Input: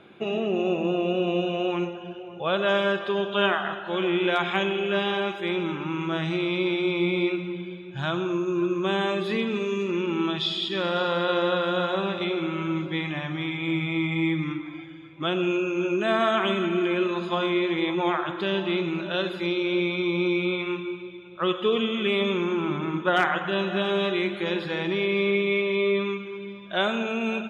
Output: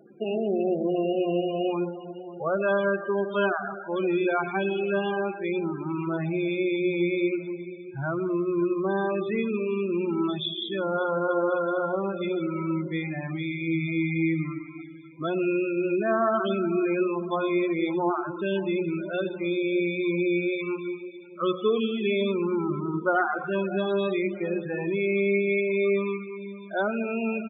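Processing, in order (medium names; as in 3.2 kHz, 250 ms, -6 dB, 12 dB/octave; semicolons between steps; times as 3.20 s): treble shelf 5.5 kHz -9.5 dB; hum notches 60/120/180/240/300 Hz; loudest bins only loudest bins 16; echo from a far wall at 220 m, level -27 dB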